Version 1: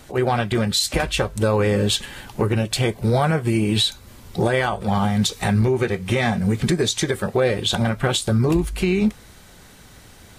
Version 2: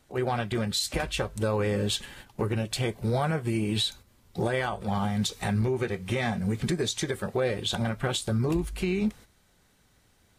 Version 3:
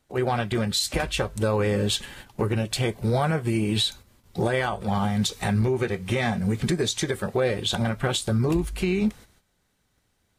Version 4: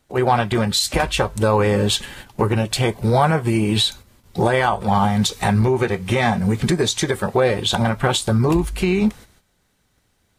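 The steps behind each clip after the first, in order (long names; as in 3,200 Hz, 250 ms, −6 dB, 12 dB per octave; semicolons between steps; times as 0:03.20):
noise gate −36 dBFS, range −10 dB; level −8 dB
noise gate −60 dBFS, range −10 dB; level +3.5 dB
dynamic equaliser 930 Hz, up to +7 dB, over −43 dBFS, Q 2.1; level +5.5 dB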